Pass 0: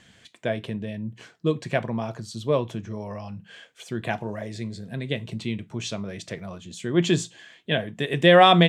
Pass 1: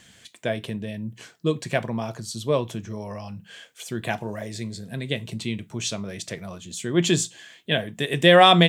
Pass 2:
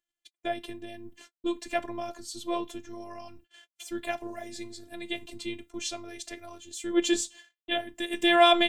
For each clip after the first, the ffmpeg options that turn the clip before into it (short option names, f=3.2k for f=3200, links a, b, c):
-af "aemphasis=mode=production:type=50kf"
-af "acompressor=mode=upward:threshold=-41dB:ratio=2.5,agate=range=-41dB:threshold=-42dB:ratio=16:detection=peak,afftfilt=real='hypot(re,im)*cos(PI*b)':imag='0':win_size=512:overlap=0.75,volume=-2dB"